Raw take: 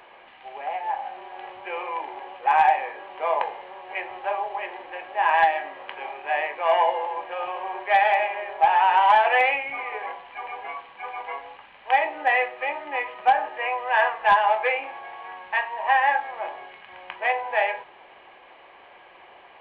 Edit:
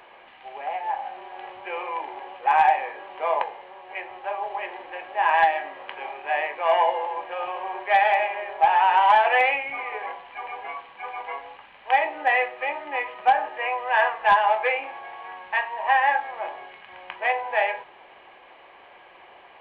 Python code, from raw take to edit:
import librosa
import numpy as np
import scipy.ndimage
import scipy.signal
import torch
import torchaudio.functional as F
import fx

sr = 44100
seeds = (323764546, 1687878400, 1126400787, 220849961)

y = fx.edit(x, sr, fx.clip_gain(start_s=3.43, length_s=0.99, db=-3.0), tone=tone)